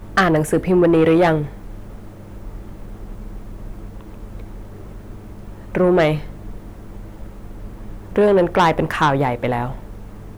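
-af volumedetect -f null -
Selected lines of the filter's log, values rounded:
mean_volume: -20.3 dB
max_volume: -8.0 dB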